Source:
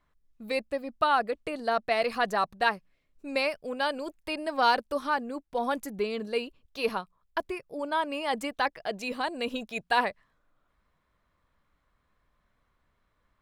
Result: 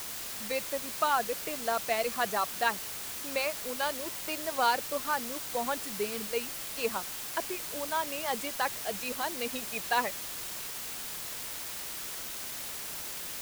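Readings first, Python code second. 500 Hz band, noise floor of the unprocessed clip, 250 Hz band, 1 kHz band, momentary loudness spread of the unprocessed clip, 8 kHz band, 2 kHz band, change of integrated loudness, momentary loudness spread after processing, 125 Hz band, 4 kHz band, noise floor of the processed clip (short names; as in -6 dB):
-3.5 dB, -74 dBFS, -5.5 dB, -3.0 dB, 10 LU, +17.0 dB, -2.5 dB, -2.5 dB, 7 LU, n/a, +0.5 dB, -39 dBFS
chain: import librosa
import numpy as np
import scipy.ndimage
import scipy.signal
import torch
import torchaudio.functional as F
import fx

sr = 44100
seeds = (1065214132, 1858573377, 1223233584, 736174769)

y = fx.dereverb_blind(x, sr, rt60_s=0.62)
y = scipy.signal.sosfilt(scipy.signal.butter(4, 130.0, 'highpass', fs=sr, output='sos'), y)
y = fx.peak_eq(y, sr, hz=280.0, db=-4.5, octaves=0.22)
y = fx.quant_dither(y, sr, seeds[0], bits=6, dither='triangular')
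y = y * 10.0 ** (-3.0 / 20.0)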